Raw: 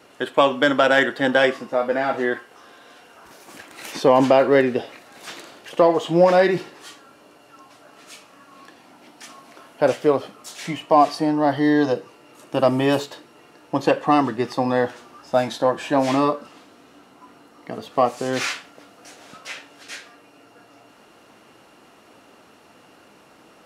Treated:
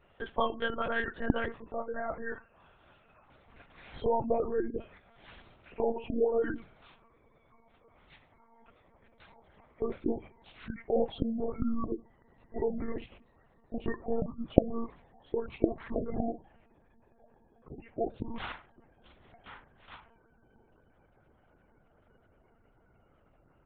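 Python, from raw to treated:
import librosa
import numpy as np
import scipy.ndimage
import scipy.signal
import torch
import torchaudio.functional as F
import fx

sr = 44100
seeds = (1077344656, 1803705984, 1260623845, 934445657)

y = fx.pitch_glide(x, sr, semitones=-12.0, runs='starting unshifted')
y = fx.spec_gate(y, sr, threshold_db=-20, keep='strong')
y = fx.lpc_monotone(y, sr, seeds[0], pitch_hz=230.0, order=10)
y = y * 10.0 ** (-12.5 / 20.0)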